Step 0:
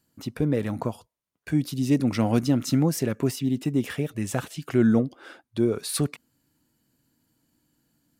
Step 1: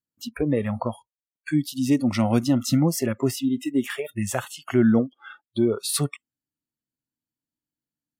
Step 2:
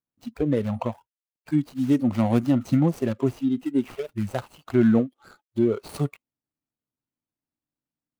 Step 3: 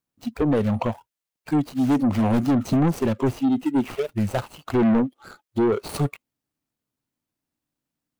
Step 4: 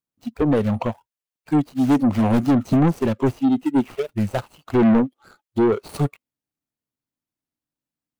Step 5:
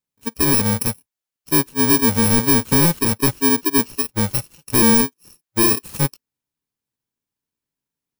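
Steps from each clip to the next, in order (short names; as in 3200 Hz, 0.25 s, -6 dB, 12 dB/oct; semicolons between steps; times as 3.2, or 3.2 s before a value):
spectral noise reduction 29 dB; in parallel at -1.5 dB: compressor, threshold -29 dBFS, peak gain reduction 13 dB
median filter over 25 samples; high shelf 12000 Hz +4 dB
soft clip -22.5 dBFS, distortion -8 dB; gain +7 dB
upward expander 1.5:1, over -37 dBFS; gain +3.5 dB
FFT order left unsorted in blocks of 64 samples; in parallel at -7 dB: hard clip -21 dBFS, distortion -9 dB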